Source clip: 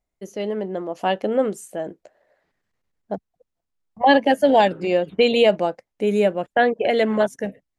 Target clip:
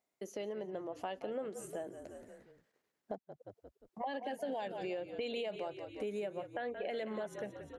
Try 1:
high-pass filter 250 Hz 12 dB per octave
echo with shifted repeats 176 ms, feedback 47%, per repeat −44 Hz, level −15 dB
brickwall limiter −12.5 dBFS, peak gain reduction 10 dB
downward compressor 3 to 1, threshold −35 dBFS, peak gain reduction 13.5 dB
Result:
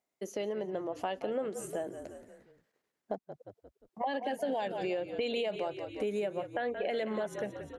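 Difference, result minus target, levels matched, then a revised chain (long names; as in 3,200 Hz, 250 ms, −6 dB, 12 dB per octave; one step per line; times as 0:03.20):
downward compressor: peak gain reduction −5.5 dB
high-pass filter 250 Hz 12 dB per octave
echo with shifted repeats 176 ms, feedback 47%, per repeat −44 Hz, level −15 dB
brickwall limiter −12.5 dBFS, peak gain reduction 10 dB
downward compressor 3 to 1, threshold −43.5 dBFS, peak gain reduction 19 dB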